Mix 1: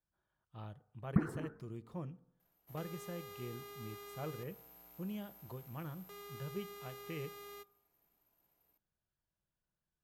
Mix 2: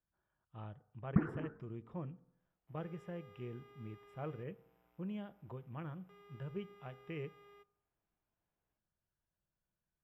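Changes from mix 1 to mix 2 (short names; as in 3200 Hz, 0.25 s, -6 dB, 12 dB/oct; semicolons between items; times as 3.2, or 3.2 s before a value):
second sound -9.5 dB; master: add polynomial smoothing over 25 samples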